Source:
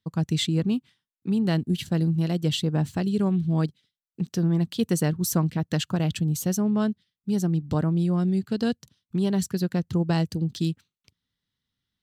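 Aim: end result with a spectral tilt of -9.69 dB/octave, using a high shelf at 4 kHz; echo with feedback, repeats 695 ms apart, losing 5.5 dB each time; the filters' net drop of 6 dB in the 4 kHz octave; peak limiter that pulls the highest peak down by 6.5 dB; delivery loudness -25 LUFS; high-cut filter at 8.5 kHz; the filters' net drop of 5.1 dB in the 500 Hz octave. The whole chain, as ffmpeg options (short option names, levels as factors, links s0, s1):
-af "lowpass=8500,equalizer=f=500:t=o:g=-7,highshelf=f=4000:g=-5.5,equalizer=f=4000:t=o:g=-4.5,alimiter=limit=0.0841:level=0:latency=1,aecho=1:1:695|1390|2085|2780|3475|4170|4865:0.531|0.281|0.149|0.079|0.0419|0.0222|0.0118,volume=1.5"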